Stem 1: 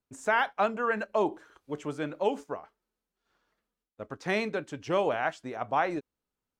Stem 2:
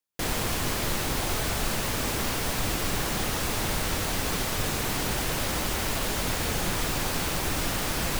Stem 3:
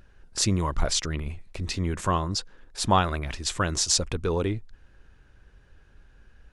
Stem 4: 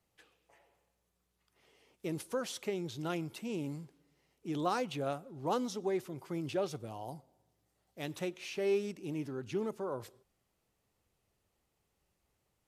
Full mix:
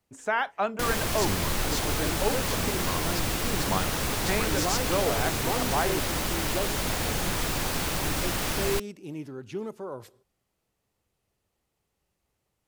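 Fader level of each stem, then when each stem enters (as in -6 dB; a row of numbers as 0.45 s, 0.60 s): -1.0 dB, -0.5 dB, -9.0 dB, +1.0 dB; 0.00 s, 0.60 s, 0.80 s, 0.00 s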